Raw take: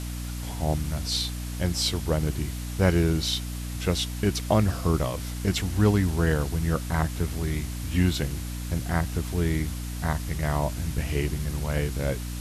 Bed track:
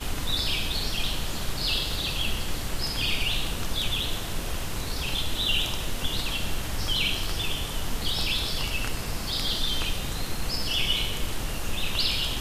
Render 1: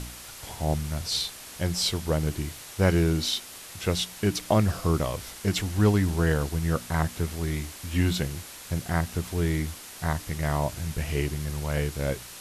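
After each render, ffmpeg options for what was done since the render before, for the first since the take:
-af "bandreject=f=60:t=h:w=4,bandreject=f=120:t=h:w=4,bandreject=f=180:t=h:w=4,bandreject=f=240:t=h:w=4,bandreject=f=300:t=h:w=4"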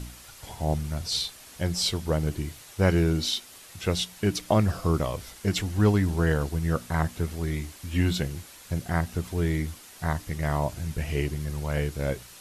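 -af "afftdn=nr=6:nf=-43"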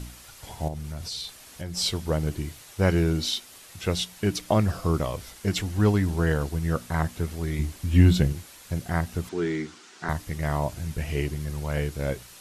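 -filter_complex "[0:a]asettb=1/sr,asplit=3[a][b][c];[a]atrim=end=0.684[d];[b]atrim=start=0.68:end=1.77,asetpts=PTS-STARTPTS,afade=t=in:d=0.004:c=qsin,afade=t=out:st=1.086:d=0.004:c=qsin,acompressor=threshold=-31dB:ratio=4:attack=3.2:release=140:knee=1:detection=peak[e];[c]atrim=start=1.766[f];[d][e]acrossfade=d=0.004:c1=hsin:c2=qsin[g];[g][f]acrossfade=d=0.004:c1=qsin:c2=hsin,asettb=1/sr,asplit=3[h][i][j];[h]atrim=end=7.594[k];[i]atrim=start=7.59:end=8.33,asetpts=PTS-STARTPTS,afade=t=in:d=0.004:c=qsin,afade=t=out:st=0.736:d=0.004:c=qsin,lowshelf=f=340:g=9.5[l];[j]atrim=start=8.326[m];[k][l]acrossfade=d=0.004:c1=hsin:c2=qsin[n];[n][m]acrossfade=d=0.004:c1=qsin:c2=hsin,asettb=1/sr,asplit=3[o][p][q];[o]atrim=end=9.294[r];[p]atrim=start=9.29:end=10.09,asetpts=PTS-STARTPTS,afade=t=in:d=0.004:c=qsin,afade=t=out:st=0.796:d=0.004:c=qsin,highpass=f=150:w=0.5412,highpass=f=150:w=1.3066,equalizer=f=160:t=q:w=4:g=-5,equalizer=f=370:t=q:w=4:g=8,equalizer=f=570:t=q:w=4:g=-8,equalizer=f=1.4k:t=q:w=4:g=6,lowpass=f=7.2k:w=0.5412,lowpass=f=7.2k:w=1.3066[s];[q]atrim=start=10.086[t];[r][s]acrossfade=d=0.004:c1=hsin:c2=qsin[u];[u][t]acrossfade=d=0.004:c1=qsin:c2=hsin"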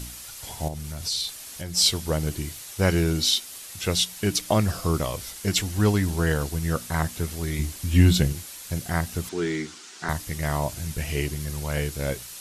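-af "highshelf=f=3.1k:g=10"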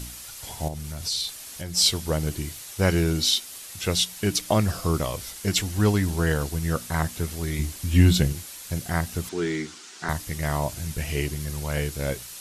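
-af anull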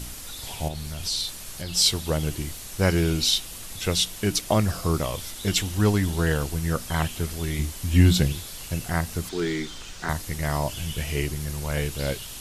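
-filter_complex "[1:a]volume=-14dB[a];[0:a][a]amix=inputs=2:normalize=0"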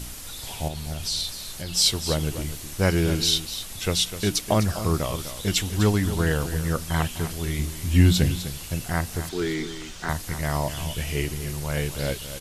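-af "aecho=1:1:251:0.266"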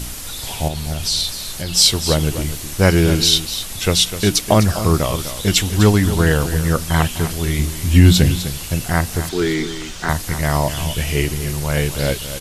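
-af "volume=8dB,alimiter=limit=-1dB:level=0:latency=1"

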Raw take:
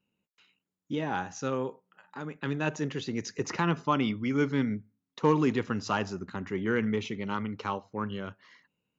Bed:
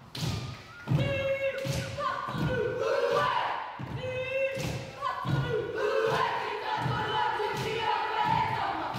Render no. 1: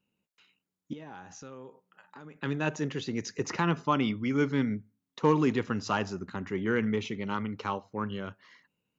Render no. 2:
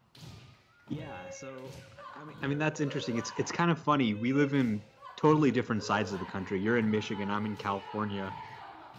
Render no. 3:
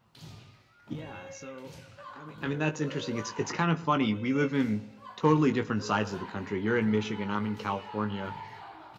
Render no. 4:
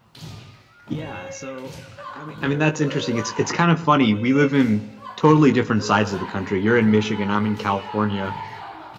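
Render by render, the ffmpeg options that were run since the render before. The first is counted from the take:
-filter_complex "[0:a]asettb=1/sr,asplit=3[a][b][c];[a]atrim=end=0.934[d];[b]atrim=start=0.93:end=2.37,asetpts=PTS-STARTPTS,afade=t=in:d=0.004:c=qsin,afade=t=out:st=1.436:d=0.004:c=qsin,acompressor=threshold=-46dB:ratio=3:attack=3.2:release=140:knee=1:detection=peak[e];[c]atrim=start=2.366[f];[d][e]acrossfade=d=0.004:c1=hsin:c2=qsin[g];[g][f]acrossfade=d=0.004:c1=qsin:c2=hsin"
-filter_complex "[1:a]volume=-16.5dB[a];[0:a][a]amix=inputs=2:normalize=0"
-filter_complex "[0:a]asplit=2[a][b];[b]adelay=19,volume=-7.5dB[c];[a][c]amix=inputs=2:normalize=0,asplit=2[d][e];[e]adelay=112,lowpass=f=2k:p=1,volume=-19dB,asplit=2[f][g];[g]adelay=112,lowpass=f=2k:p=1,volume=0.46,asplit=2[h][i];[i]adelay=112,lowpass=f=2k:p=1,volume=0.46,asplit=2[j][k];[k]adelay=112,lowpass=f=2k:p=1,volume=0.46[l];[d][f][h][j][l]amix=inputs=5:normalize=0"
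-af "volume=10dB,alimiter=limit=-3dB:level=0:latency=1"

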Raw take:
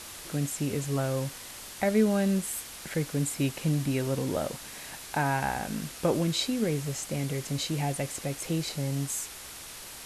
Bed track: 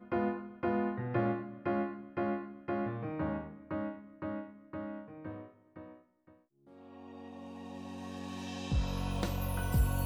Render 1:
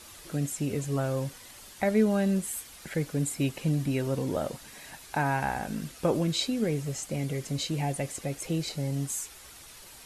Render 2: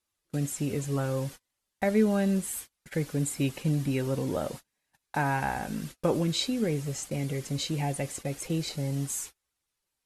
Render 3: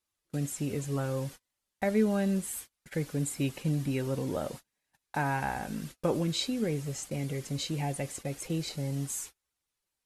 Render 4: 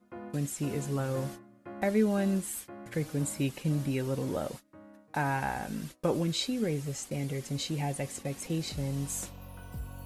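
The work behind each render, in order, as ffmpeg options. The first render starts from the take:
-af "afftdn=nr=8:nf=-44"
-af "agate=range=-35dB:threshold=-40dB:ratio=16:detection=peak,bandreject=f=660:w=16"
-af "volume=-2.5dB"
-filter_complex "[1:a]volume=-11.5dB[a];[0:a][a]amix=inputs=2:normalize=0"

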